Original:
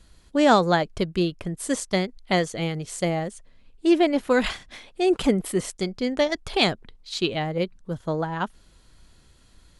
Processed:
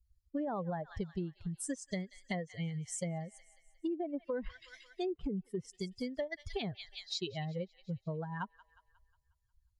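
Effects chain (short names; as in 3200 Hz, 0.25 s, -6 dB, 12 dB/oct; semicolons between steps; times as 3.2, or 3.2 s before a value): per-bin expansion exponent 2; bell 2600 Hz -5.5 dB 0.32 oct; on a send: thin delay 0.18 s, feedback 48%, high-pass 1800 Hz, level -18.5 dB; on the sum: treble ducked by the level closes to 1000 Hz, closed at -21 dBFS; limiter -20 dBFS, peak gain reduction 9.5 dB; compressor 4:1, threshold -42 dBFS, peak gain reduction 16 dB; gain +5 dB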